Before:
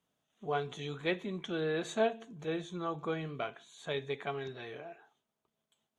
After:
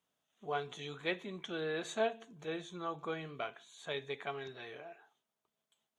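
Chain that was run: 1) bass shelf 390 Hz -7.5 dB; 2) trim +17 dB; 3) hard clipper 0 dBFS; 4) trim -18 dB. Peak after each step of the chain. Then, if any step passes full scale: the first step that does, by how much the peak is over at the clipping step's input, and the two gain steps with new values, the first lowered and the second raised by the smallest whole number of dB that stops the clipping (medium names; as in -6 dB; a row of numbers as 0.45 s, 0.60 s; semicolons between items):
-20.5 dBFS, -3.5 dBFS, -3.5 dBFS, -21.5 dBFS; nothing clips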